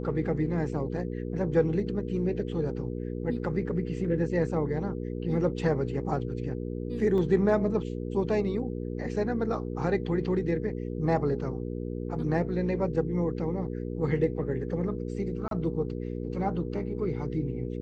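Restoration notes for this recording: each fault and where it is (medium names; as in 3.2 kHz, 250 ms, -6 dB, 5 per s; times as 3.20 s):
hum 60 Hz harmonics 8 -34 dBFS
7.18 s: dropout 2.1 ms
15.48–15.51 s: dropout 32 ms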